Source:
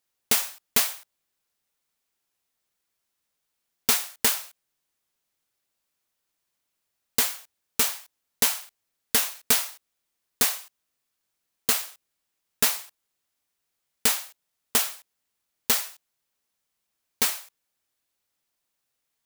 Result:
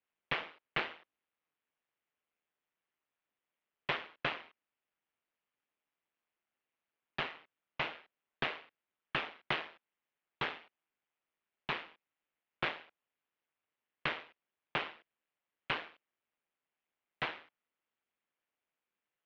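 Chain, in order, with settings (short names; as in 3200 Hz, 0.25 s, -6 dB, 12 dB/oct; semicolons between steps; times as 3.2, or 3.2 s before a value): mistuned SSB -300 Hz 490–3300 Hz; AM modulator 160 Hz, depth 55%; gain -1.5 dB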